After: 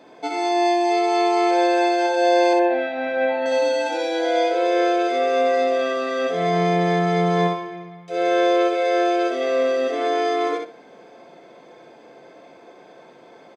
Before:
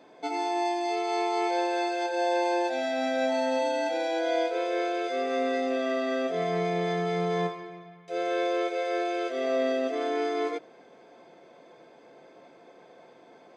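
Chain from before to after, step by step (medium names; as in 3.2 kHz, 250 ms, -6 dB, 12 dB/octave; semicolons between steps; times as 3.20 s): 2.53–3.46 s: low-pass 2.8 kHz 24 dB/octave; feedback delay 63 ms, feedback 18%, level -4 dB; trim +5.5 dB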